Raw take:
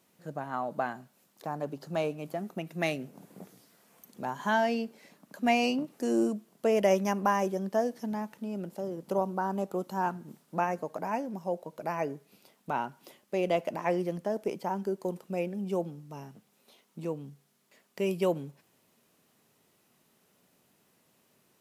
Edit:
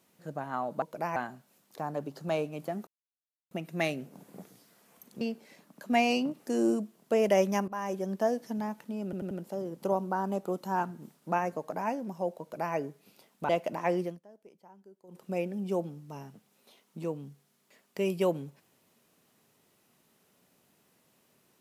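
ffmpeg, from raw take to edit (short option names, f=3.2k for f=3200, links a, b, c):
-filter_complex "[0:a]asplit=12[a][b][c][d][e][f][g][h][i][j][k][l];[a]atrim=end=0.822[m];[b]atrim=start=11.668:end=12.012[n];[c]atrim=start=0.818:end=2.53,asetpts=PTS-STARTPTS,afade=t=out:st=1.708:d=0.004:c=hsin,apad=pad_dur=0.64[o];[d]atrim=start=2.53:end=4.232,asetpts=PTS-STARTPTS,afade=t=in:d=0.004:c=hsin[p];[e]atrim=start=4.738:end=7.21,asetpts=PTS-STARTPTS,afade=t=out:st=2.468:d=0.004:c=hsin:silence=0.133352[q];[f]atrim=start=7.21:end=8.662,asetpts=PTS-STARTPTS,afade=t=in:d=0.43:silence=0.133352[r];[g]atrim=start=8.568:end=8.662[s];[h]atrim=start=8.568:end=8.662[t];[i]atrim=start=8.568:end=12.752[u];[j]atrim=start=13.498:end=14.21,asetpts=PTS-STARTPTS,afade=t=out:st=0.532:d=0.18:silence=0.0707946[v];[k]atrim=start=14.21:end=15.09,asetpts=PTS-STARTPTS,volume=-23dB[w];[l]atrim=start=15.09,asetpts=PTS-STARTPTS,afade=t=in:d=0.18:silence=0.0707946[x];[m][n]acrossfade=d=0.004:c1=hsin:c2=hsin[y];[o][p]concat=n=2:v=0:a=1[z];[y][z]acrossfade=d=0.004:c1=hsin:c2=hsin[aa];[q][r]concat=n=2:v=0:a=1[ab];[aa][ab]acrossfade=d=0.004:c1=hsin:c2=hsin[ac];[ac][s]acrossfade=d=0.004:c1=hsin:c2=hsin[ad];[ad][t]acrossfade=d=0.004:c1=hsin:c2=hsin[ae];[ae][u]acrossfade=d=0.004:c1=hsin:c2=hsin[af];[v][w][x]concat=n=3:v=0:a=1[ag];[af][ag]acrossfade=d=0.004:c1=hsin:c2=hsin"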